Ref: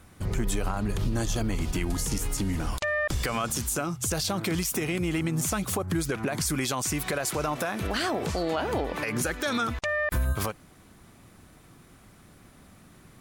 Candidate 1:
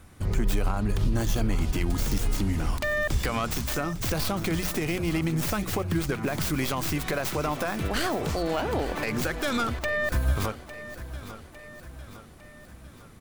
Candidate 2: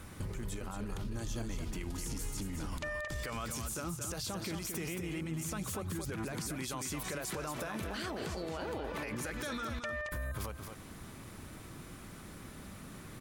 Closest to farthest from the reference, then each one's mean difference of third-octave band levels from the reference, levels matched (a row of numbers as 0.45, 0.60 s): 1, 2; 3.5, 6.0 dB